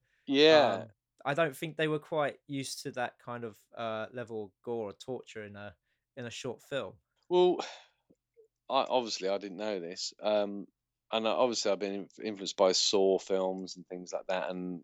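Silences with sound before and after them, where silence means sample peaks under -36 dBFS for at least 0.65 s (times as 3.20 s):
7.71–8.70 s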